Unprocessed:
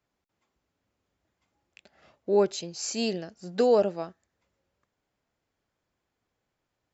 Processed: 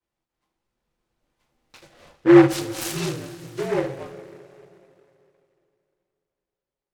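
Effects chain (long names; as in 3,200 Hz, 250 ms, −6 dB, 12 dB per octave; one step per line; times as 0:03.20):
source passing by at 0:02.04, 7 m/s, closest 3.5 metres
coupled-rooms reverb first 0.28 s, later 2.9 s, from −20 dB, DRR −9.5 dB
frequency shifter −57 Hz
short delay modulated by noise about 1,200 Hz, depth 0.078 ms
level −1 dB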